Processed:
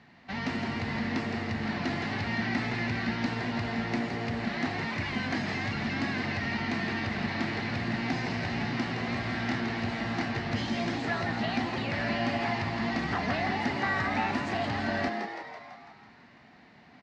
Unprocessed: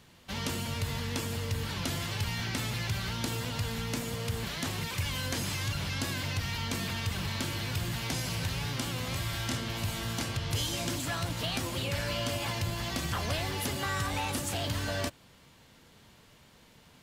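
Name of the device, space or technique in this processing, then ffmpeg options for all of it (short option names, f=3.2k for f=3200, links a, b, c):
frequency-shifting delay pedal into a guitar cabinet: -filter_complex "[0:a]asplit=9[a][b][c][d][e][f][g][h][i];[b]adelay=166,afreqshift=120,volume=-6.5dB[j];[c]adelay=332,afreqshift=240,volume=-10.9dB[k];[d]adelay=498,afreqshift=360,volume=-15.4dB[l];[e]adelay=664,afreqshift=480,volume=-19.8dB[m];[f]adelay=830,afreqshift=600,volume=-24.2dB[n];[g]adelay=996,afreqshift=720,volume=-28.7dB[o];[h]adelay=1162,afreqshift=840,volume=-33.1dB[p];[i]adelay=1328,afreqshift=960,volume=-37.6dB[q];[a][j][k][l][m][n][o][p][q]amix=inputs=9:normalize=0,highpass=80,equalizer=f=87:t=q:w=4:g=-5,equalizer=f=240:t=q:w=4:g=7,equalizer=f=510:t=q:w=4:g=-6,equalizer=f=740:t=q:w=4:g=9,equalizer=f=1.9k:t=q:w=4:g=9,equalizer=f=3.3k:t=q:w=4:g=-9,lowpass=f=4.4k:w=0.5412,lowpass=f=4.4k:w=1.3066"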